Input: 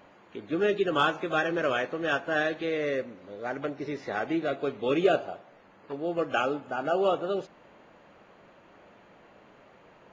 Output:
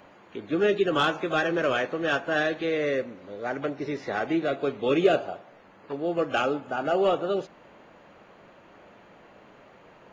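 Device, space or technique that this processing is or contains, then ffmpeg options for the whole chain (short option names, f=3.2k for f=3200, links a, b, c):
one-band saturation: -filter_complex "[0:a]acrossover=split=520|2400[a][b][c];[b]asoftclip=type=tanh:threshold=-23dB[d];[a][d][c]amix=inputs=3:normalize=0,volume=3dB"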